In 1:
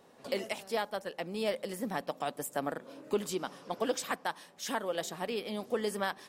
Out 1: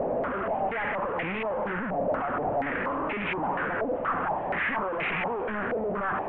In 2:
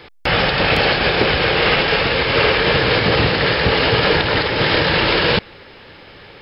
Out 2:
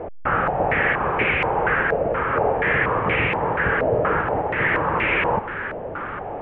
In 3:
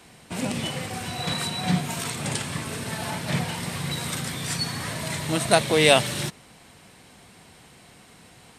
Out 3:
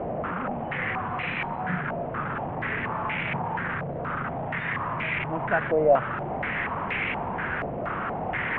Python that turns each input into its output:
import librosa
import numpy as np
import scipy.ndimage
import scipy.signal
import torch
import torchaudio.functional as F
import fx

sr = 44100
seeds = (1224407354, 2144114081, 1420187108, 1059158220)

y = fx.delta_mod(x, sr, bps=16000, step_db=-18.5)
y = fx.filter_held_lowpass(y, sr, hz=4.2, low_hz=630.0, high_hz=2300.0)
y = y * librosa.db_to_amplitude(-8.0)